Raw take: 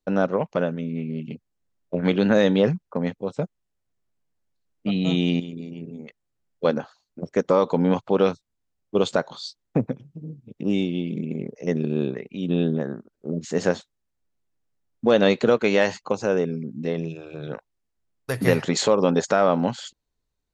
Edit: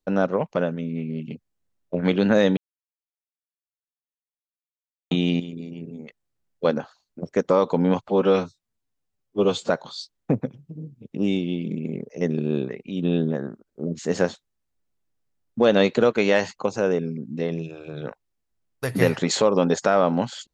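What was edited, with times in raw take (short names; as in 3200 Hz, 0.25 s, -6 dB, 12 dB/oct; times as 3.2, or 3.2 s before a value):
2.57–5.11 mute
8.08–9.16 stretch 1.5×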